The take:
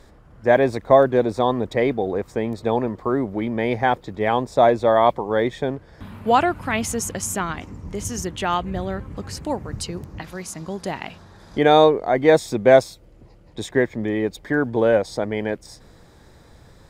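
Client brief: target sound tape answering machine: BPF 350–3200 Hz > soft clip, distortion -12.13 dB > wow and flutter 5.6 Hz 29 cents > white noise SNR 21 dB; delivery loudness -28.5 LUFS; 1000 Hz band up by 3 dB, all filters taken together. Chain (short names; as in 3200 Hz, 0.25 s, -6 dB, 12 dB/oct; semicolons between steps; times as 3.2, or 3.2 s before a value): BPF 350–3200 Hz; bell 1000 Hz +4.5 dB; soft clip -10 dBFS; wow and flutter 5.6 Hz 29 cents; white noise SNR 21 dB; gain -6 dB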